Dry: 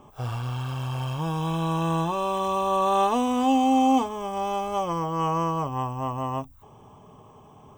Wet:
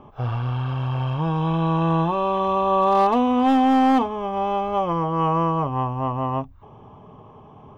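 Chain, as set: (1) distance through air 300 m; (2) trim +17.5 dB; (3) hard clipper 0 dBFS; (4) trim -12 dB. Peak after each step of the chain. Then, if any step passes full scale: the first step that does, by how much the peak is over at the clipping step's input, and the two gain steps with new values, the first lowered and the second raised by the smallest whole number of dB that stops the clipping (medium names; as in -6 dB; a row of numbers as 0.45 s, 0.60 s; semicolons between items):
-11.5 dBFS, +6.0 dBFS, 0.0 dBFS, -12.0 dBFS; step 2, 6.0 dB; step 2 +11.5 dB, step 4 -6 dB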